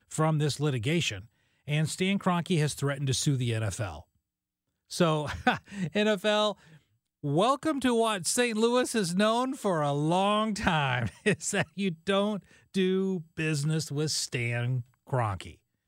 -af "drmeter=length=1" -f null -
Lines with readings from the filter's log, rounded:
Channel 1: DR: 12.4
Overall DR: 12.4